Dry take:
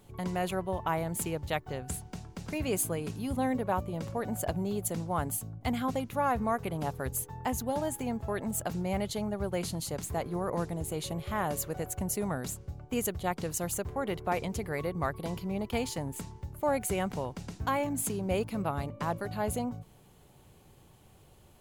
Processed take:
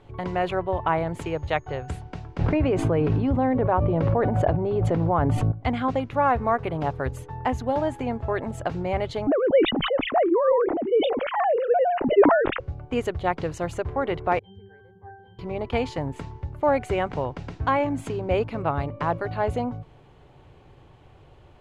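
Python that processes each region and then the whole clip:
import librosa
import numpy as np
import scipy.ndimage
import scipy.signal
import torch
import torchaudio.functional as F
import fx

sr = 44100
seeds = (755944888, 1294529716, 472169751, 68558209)

y = fx.peak_eq(x, sr, hz=220.0, db=-13.0, octaves=0.42, at=(1.2, 1.87), fade=0.02)
y = fx.dmg_tone(y, sr, hz=6600.0, level_db=-57.0, at=(1.2, 1.87), fade=0.02)
y = fx.chain(y, sr, fx.lowpass(hz=1200.0, slope=6),
    fx.env_flatten(amount_pct=100), at=(2.39, 5.52))
y = fx.chain(y, sr, fx.sine_speech(),
    fx.tilt_eq(slope=-3.5),
    fx.sustainer(db_per_s=46.0), at=(9.27, 12.6))
y = fx.chain(y, sr, fx.high_shelf(hz=3200.0, db=7.5),
    fx.octave_resonator(note='G', decay_s=0.7), at=(14.39, 15.39))
y = scipy.signal.sosfilt(scipy.signal.butter(2, 2700.0, 'lowpass', fs=sr, output='sos'), y)
y = fx.peak_eq(y, sr, hz=200.0, db=-14.5, octaves=0.27)
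y = y * 10.0 ** (8.0 / 20.0)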